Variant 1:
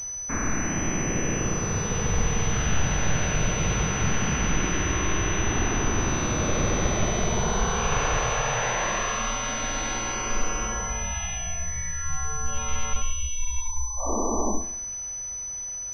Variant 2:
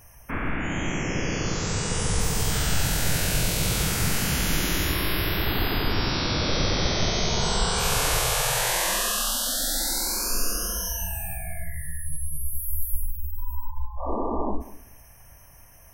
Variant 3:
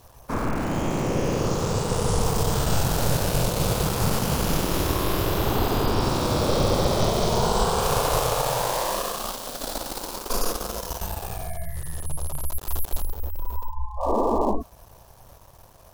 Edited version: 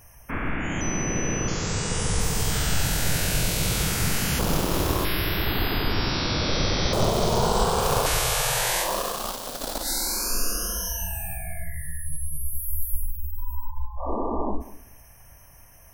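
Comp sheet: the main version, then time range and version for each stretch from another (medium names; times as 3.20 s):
2
0.81–1.48 s: from 1
4.39–5.05 s: from 3
6.93–8.06 s: from 3
8.85–9.84 s: from 3, crossfade 0.10 s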